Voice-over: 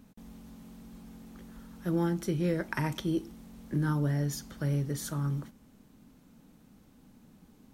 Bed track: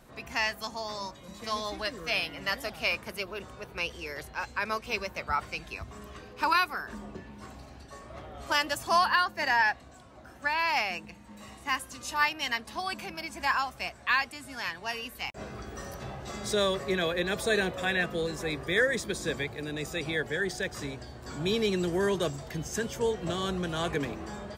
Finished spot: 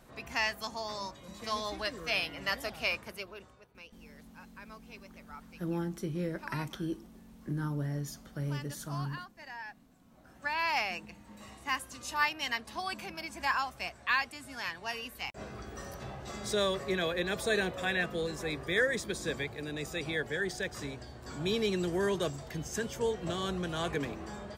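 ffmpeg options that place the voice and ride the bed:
ffmpeg -i stem1.wav -i stem2.wav -filter_complex "[0:a]adelay=3750,volume=-5.5dB[link_01];[1:a]volume=14.5dB,afade=type=out:start_time=2.76:duration=0.92:silence=0.133352,afade=type=in:start_time=10.01:duration=0.64:silence=0.149624[link_02];[link_01][link_02]amix=inputs=2:normalize=0" out.wav

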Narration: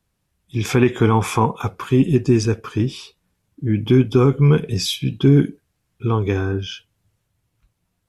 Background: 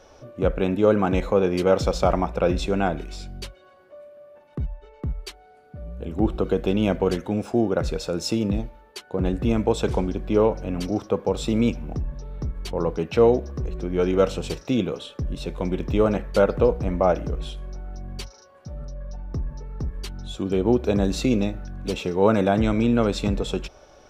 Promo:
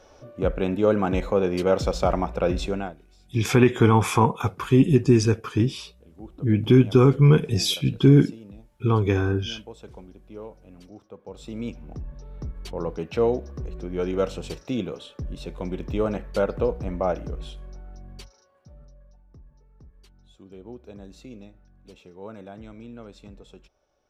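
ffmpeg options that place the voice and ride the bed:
ffmpeg -i stem1.wav -i stem2.wav -filter_complex "[0:a]adelay=2800,volume=-1.5dB[link_01];[1:a]volume=13.5dB,afade=type=out:start_time=2.66:duration=0.29:silence=0.11885,afade=type=in:start_time=11.18:duration=1.19:silence=0.16788,afade=type=out:start_time=17.51:duration=1.7:silence=0.149624[link_02];[link_01][link_02]amix=inputs=2:normalize=0" out.wav

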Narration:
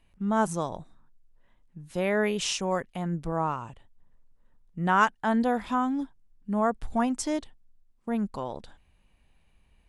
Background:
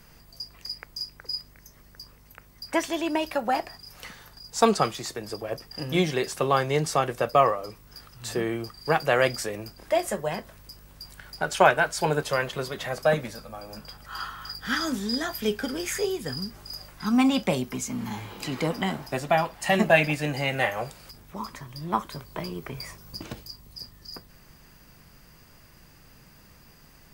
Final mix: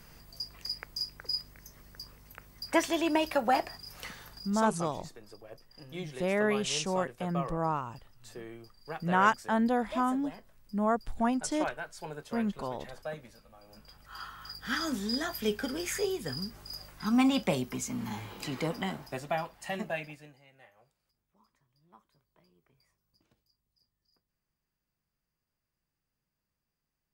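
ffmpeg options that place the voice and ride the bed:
ffmpeg -i stem1.wav -i stem2.wav -filter_complex "[0:a]adelay=4250,volume=-2.5dB[link_01];[1:a]volume=12dB,afade=type=out:start_time=4.42:duration=0.21:silence=0.158489,afade=type=in:start_time=13.56:duration=1.44:silence=0.223872,afade=type=out:start_time=18.28:duration=2.11:silence=0.0334965[link_02];[link_01][link_02]amix=inputs=2:normalize=0" out.wav

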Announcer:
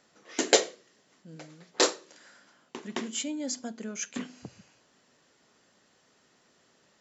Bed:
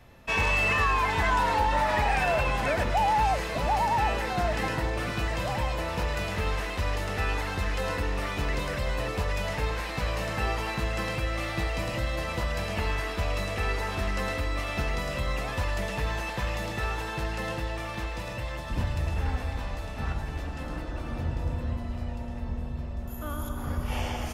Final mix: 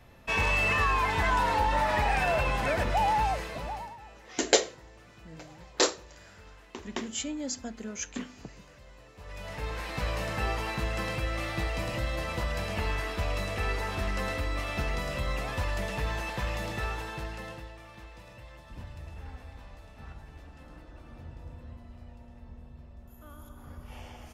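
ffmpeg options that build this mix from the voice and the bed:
ffmpeg -i stem1.wav -i stem2.wav -filter_complex "[0:a]adelay=4000,volume=-1dB[link_01];[1:a]volume=20dB,afade=type=out:start_time=3.08:duration=0.89:silence=0.0794328,afade=type=in:start_time=9.16:duration=0.86:silence=0.0841395,afade=type=out:start_time=16.74:duration=1.01:silence=0.237137[link_02];[link_01][link_02]amix=inputs=2:normalize=0" out.wav

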